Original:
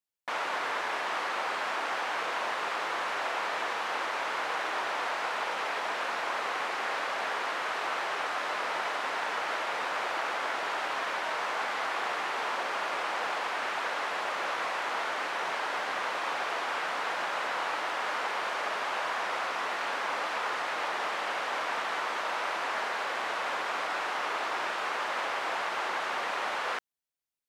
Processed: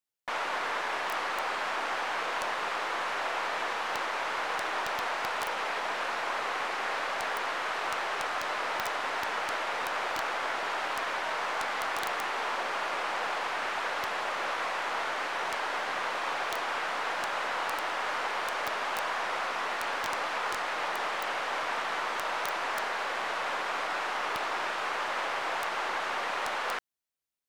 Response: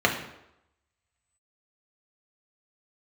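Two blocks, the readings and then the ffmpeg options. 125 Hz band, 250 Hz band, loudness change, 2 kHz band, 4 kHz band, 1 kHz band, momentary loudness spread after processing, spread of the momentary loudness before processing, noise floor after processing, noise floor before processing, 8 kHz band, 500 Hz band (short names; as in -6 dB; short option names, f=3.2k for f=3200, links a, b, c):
n/a, +0.5 dB, 0.0 dB, 0.0 dB, 0.0 dB, 0.0 dB, 0 LU, 0 LU, -34 dBFS, -34 dBFS, +1.5 dB, 0.0 dB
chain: -af "aeval=exprs='0.112*(cos(1*acos(clip(val(0)/0.112,-1,1)))-cos(1*PI/2))+0.002*(cos(8*acos(clip(val(0)/0.112,-1,1)))-cos(8*PI/2))':c=same,aeval=exprs='(mod(11.2*val(0)+1,2)-1)/11.2':c=same"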